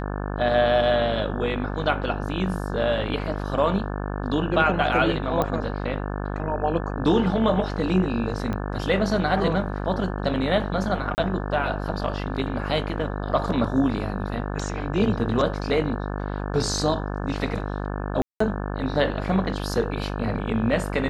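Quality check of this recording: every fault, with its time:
buzz 50 Hz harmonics 35 -29 dBFS
5.42 s: pop -11 dBFS
8.53 s: pop -17 dBFS
11.15–11.18 s: dropout 29 ms
18.22–18.40 s: dropout 184 ms

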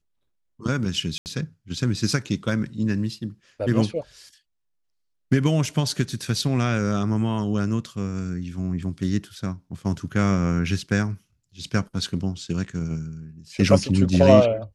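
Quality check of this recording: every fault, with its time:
1.18–1.26 s: dropout 79 ms

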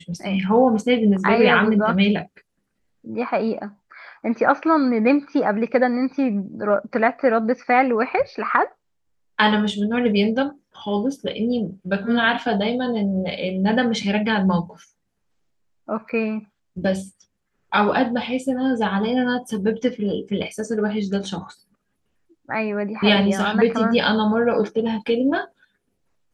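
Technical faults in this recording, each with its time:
16.09 s: dropout 4 ms

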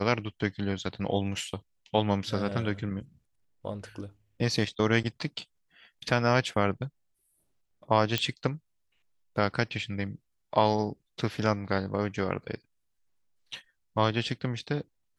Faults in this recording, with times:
8.18 s: pop -11 dBFS

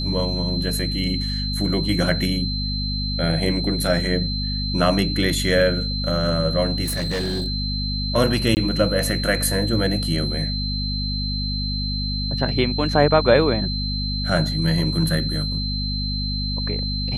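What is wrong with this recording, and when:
hum 50 Hz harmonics 5 -26 dBFS
whine 4.1 kHz -27 dBFS
6.84–7.48 s: clipped -20.5 dBFS
8.55–8.57 s: dropout 19 ms

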